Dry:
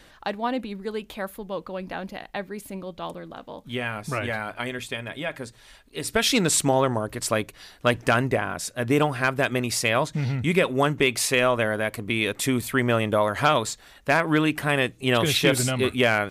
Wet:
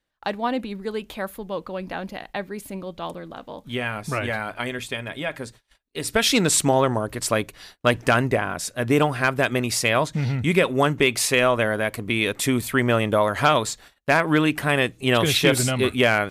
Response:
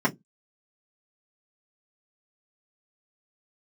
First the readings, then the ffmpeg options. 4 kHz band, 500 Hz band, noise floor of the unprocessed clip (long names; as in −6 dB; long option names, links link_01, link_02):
+2.0 dB, +2.0 dB, −53 dBFS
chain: -af "agate=range=-30dB:threshold=-46dB:ratio=16:detection=peak,volume=2dB"